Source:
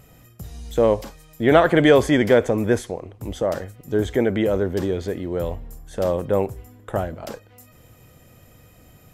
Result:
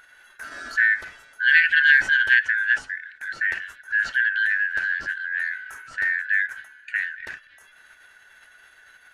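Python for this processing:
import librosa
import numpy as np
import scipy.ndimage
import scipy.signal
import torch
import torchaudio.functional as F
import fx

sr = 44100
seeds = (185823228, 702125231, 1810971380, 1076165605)

y = fx.band_shuffle(x, sr, order='4123')
y = fx.lowpass(y, sr, hz=2600.0, slope=6)
y = fx.low_shelf(y, sr, hz=110.0, db=5.0)
y = fx.formant_shift(y, sr, semitones=-2)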